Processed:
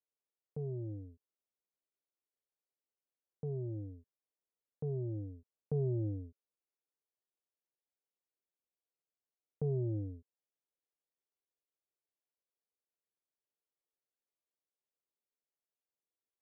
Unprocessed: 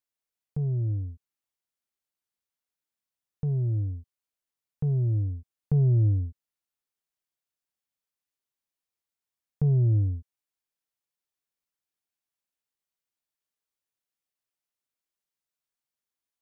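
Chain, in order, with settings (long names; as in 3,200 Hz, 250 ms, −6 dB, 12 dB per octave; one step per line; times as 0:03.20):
resonant band-pass 450 Hz, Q 1.7
level +1 dB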